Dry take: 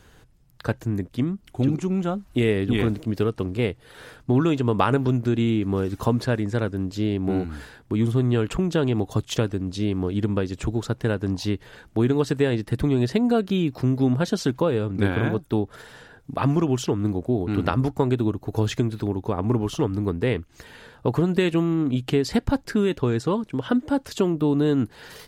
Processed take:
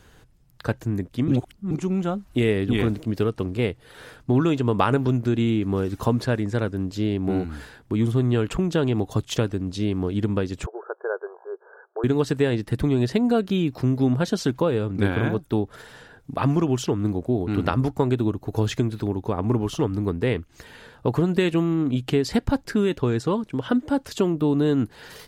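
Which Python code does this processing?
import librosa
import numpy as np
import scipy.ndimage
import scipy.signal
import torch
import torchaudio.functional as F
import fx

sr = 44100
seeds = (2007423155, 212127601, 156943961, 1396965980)

y = fx.brickwall_bandpass(x, sr, low_hz=360.0, high_hz=1700.0, at=(10.66, 12.04))
y = fx.edit(y, sr, fx.reverse_span(start_s=1.28, length_s=0.43), tone=tone)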